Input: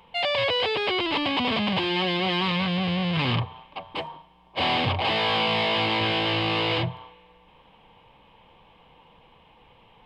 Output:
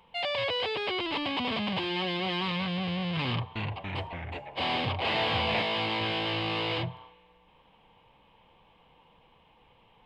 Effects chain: 3.27–5.62 s: ever faster or slower copies 285 ms, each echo -2 st, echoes 3; trim -6 dB

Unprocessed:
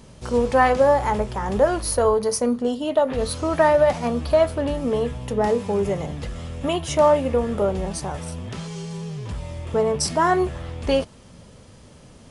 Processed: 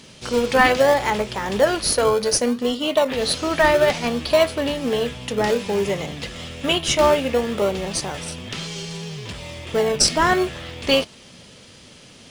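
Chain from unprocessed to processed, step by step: frequency weighting D; in parallel at -11 dB: decimation with a swept rate 36×, swing 60% 0.61 Hz

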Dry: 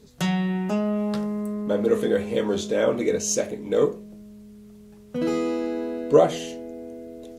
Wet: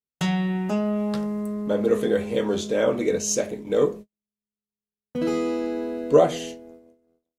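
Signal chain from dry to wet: gate -34 dBFS, range -51 dB

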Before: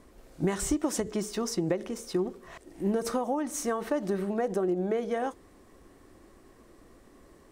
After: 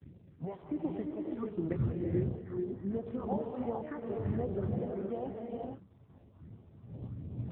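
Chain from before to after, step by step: wind noise 100 Hz -32 dBFS; gate -45 dBFS, range -41 dB; low-pass 2.1 kHz 12 dB/octave; phase shifter stages 4, 1.4 Hz, lowest notch 240–1600 Hz; gated-style reverb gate 500 ms rising, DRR 0.5 dB; trim -5 dB; AMR-NB 5.9 kbps 8 kHz

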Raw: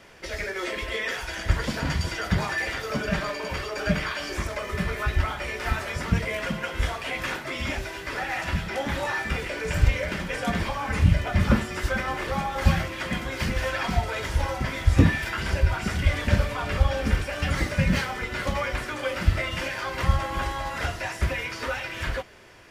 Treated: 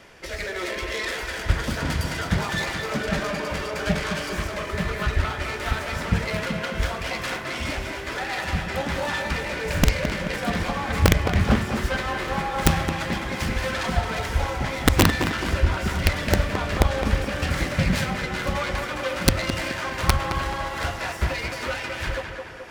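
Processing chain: self-modulated delay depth 0.61 ms; reverse; upward compressor, threshold -42 dBFS; reverse; integer overflow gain 8.5 dB; tape echo 214 ms, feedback 64%, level -4.5 dB, low-pass 2.9 kHz; trim +1 dB

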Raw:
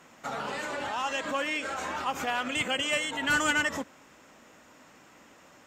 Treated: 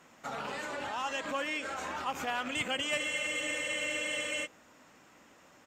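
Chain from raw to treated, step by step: rattle on loud lows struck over -42 dBFS, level -30 dBFS; speakerphone echo 200 ms, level -21 dB; spectral freeze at 2.99 s, 1.46 s; trim -4 dB

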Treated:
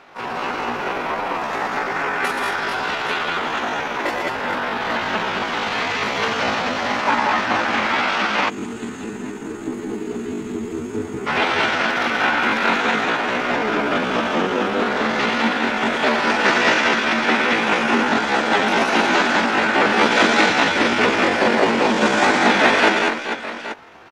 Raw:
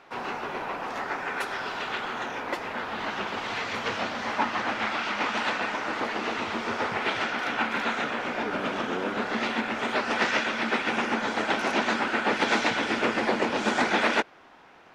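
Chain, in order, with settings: multi-tap echo 44/68/109/121/273/510 ms -14/-5.5/-7.5/-4/-8.5/-12 dB; tempo 0.62×; time-frequency box 8.49–11.27 s, 460–6300 Hz -19 dB; trim +6.5 dB

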